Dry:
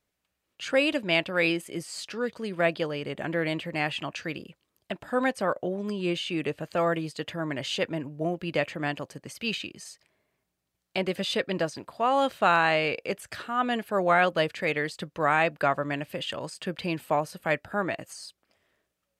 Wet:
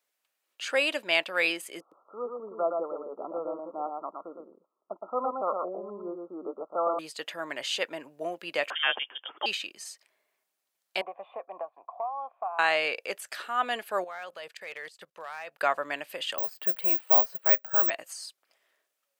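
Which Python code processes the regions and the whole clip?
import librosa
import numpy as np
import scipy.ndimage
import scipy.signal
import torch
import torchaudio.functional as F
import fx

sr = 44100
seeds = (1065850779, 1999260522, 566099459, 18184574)

y = fx.chain(x, sr, fx.brickwall_bandpass(low_hz=170.0, high_hz=1400.0),
    fx.echo_single(ms=116, db=-4.0), at=(1.8, 6.99))
y = fx.chain(y, sr, fx.high_shelf(hz=2000.0, db=12.0),
    fx.freq_invert(carrier_hz=3400), at=(8.7, 9.46))
y = fx.chain(y, sr, fx.formant_cascade(vowel='a'),
    fx.band_squash(depth_pct=100), at=(11.01, 12.59))
y = fx.chain(y, sr, fx.peak_eq(hz=280.0, db=-12.0, octaves=0.39),
    fx.level_steps(step_db=19),
    fx.overload_stage(gain_db=30.0), at=(14.04, 15.61))
y = fx.chain(y, sr, fx.lowpass(hz=1300.0, slope=6),
    fx.resample_bad(factor=2, down='filtered', up='zero_stuff'), at=(16.38, 17.9))
y = scipy.signal.sosfilt(scipy.signal.butter(2, 570.0, 'highpass', fs=sr, output='sos'), y)
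y = fx.high_shelf(y, sr, hz=8200.0, db=5.5)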